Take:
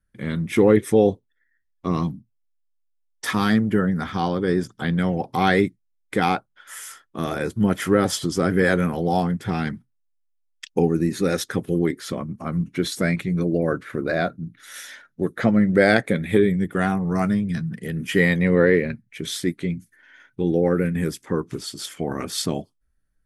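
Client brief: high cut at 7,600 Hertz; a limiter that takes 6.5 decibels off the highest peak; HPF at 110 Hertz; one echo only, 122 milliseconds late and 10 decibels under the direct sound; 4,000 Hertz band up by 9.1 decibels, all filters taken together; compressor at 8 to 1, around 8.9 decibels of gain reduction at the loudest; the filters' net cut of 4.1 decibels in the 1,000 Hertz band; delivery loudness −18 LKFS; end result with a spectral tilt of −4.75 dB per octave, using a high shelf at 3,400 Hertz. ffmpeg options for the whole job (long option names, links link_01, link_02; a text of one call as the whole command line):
ffmpeg -i in.wav -af "highpass=110,lowpass=7600,equalizer=frequency=1000:width_type=o:gain=-7.5,highshelf=frequency=3400:gain=7,equalizer=frequency=4000:width_type=o:gain=7,acompressor=threshold=-21dB:ratio=8,alimiter=limit=-17dB:level=0:latency=1,aecho=1:1:122:0.316,volume=10dB" out.wav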